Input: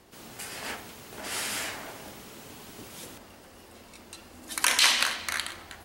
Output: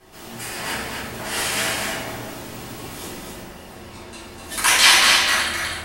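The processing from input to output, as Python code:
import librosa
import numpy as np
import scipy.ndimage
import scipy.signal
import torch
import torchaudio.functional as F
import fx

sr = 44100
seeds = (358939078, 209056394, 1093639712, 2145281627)

y = fx.high_shelf(x, sr, hz=12000.0, db=-11.0, at=(3.75, 4.19))
y = y + 10.0 ** (-4.0 / 20.0) * np.pad(y, (int(252 * sr / 1000.0), 0))[:len(y)]
y = fx.room_shoebox(y, sr, seeds[0], volume_m3=180.0, walls='mixed', distance_m=3.7)
y = y * 10.0 ** (-2.5 / 20.0)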